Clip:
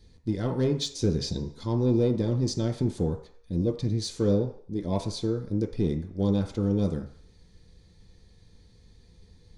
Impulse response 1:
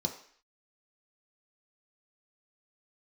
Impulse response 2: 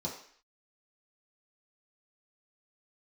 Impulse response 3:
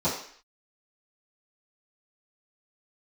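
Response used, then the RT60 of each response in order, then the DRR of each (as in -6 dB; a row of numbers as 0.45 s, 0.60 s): 1; 0.55 s, 0.55 s, 0.55 s; 2.0 dB, -4.5 dB, -14.0 dB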